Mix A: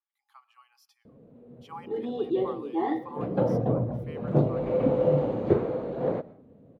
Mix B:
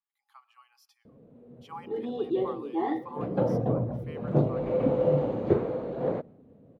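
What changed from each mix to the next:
background: send -11.0 dB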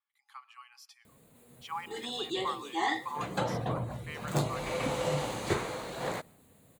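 background: remove LPF 2200 Hz 12 dB/oct; master: add graphic EQ 125/250/500/1000/2000/4000/8000 Hz -4/-8/-9/+5/+9/+5/+11 dB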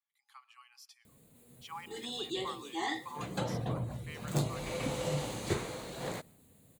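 master: add bell 1100 Hz -7 dB 2.6 oct

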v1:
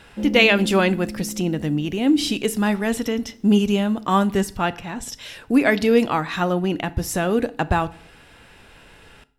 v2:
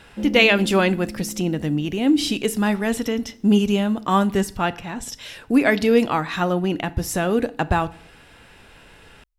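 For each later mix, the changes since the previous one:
background: send off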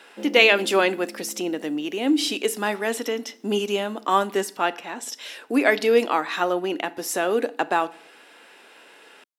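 master: add HPF 300 Hz 24 dB/oct

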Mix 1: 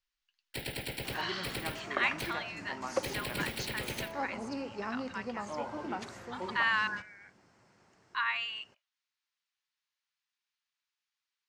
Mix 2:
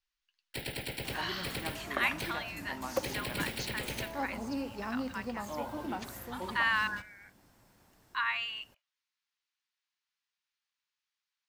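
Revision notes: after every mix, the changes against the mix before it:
second sound: remove speaker cabinet 110–7000 Hz, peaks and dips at 270 Hz -4 dB, 400 Hz +4 dB, 1300 Hz +3 dB, 2100 Hz +3 dB, 3600 Hz -6 dB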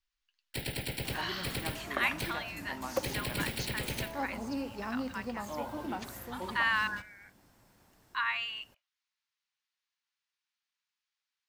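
first sound: add tone controls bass +5 dB, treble +3 dB

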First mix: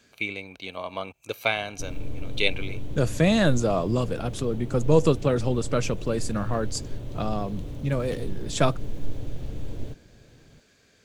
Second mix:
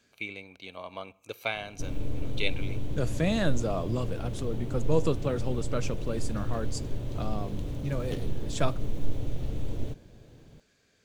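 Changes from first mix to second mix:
speech -8.5 dB; reverb: on, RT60 0.70 s

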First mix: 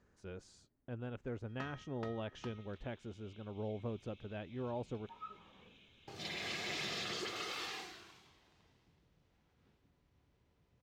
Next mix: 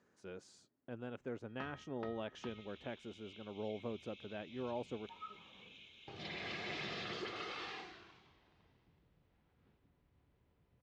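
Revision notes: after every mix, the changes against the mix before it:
speech: add HPF 180 Hz 12 dB/oct; first sound: add air absorption 190 m; second sound +7.0 dB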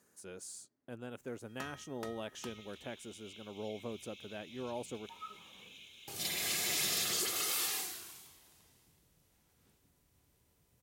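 first sound: remove air absorption 190 m; master: remove air absorption 200 m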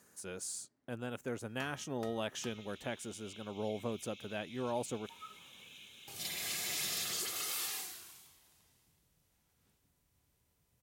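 speech +6.0 dB; first sound -3.5 dB; master: add bell 360 Hz -3.5 dB 1.3 oct

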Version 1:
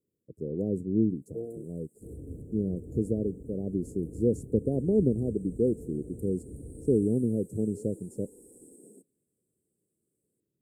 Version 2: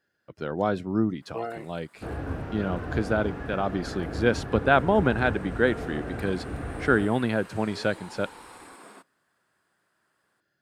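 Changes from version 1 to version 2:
second sound +8.0 dB; master: remove Chebyshev band-stop 460–7700 Hz, order 4

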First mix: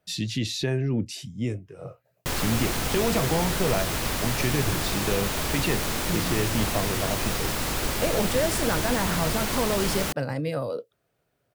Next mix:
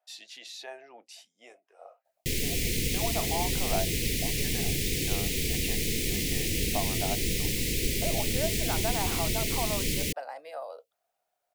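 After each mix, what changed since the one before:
speech: add ladder high-pass 670 Hz, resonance 70%; background: add elliptic band-stop 460–2100 Hz, stop band 40 dB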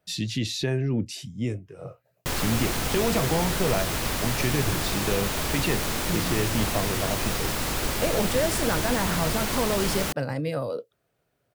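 speech: remove ladder high-pass 670 Hz, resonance 70%; background: remove elliptic band-stop 460–2100 Hz, stop band 40 dB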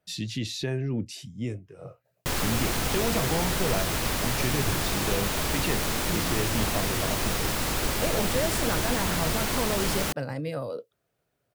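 speech -3.5 dB

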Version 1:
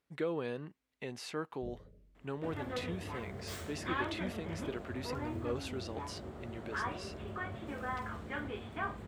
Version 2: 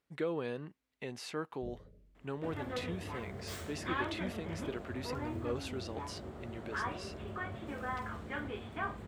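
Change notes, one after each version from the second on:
none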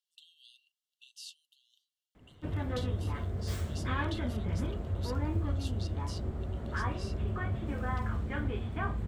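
speech: add brick-wall FIR high-pass 2700 Hz; first sound: muted; master: remove HPF 410 Hz 6 dB/oct

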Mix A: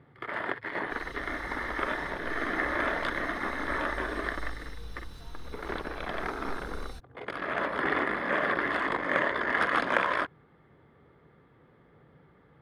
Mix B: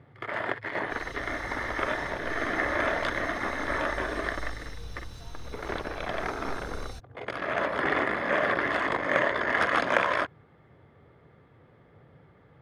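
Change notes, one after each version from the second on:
master: add fifteen-band EQ 100 Hz +9 dB, 630 Hz +5 dB, 2500 Hz +3 dB, 6300 Hz +8 dB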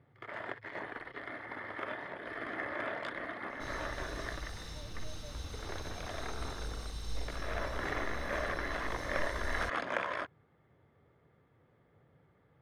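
first sound -10.5 dB; second sound: entry +2.70 s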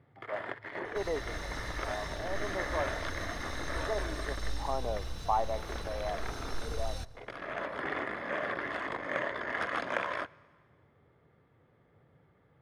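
speech: unmuted; second sound: entry -2.65 s; reverb: on, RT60 1.7 s

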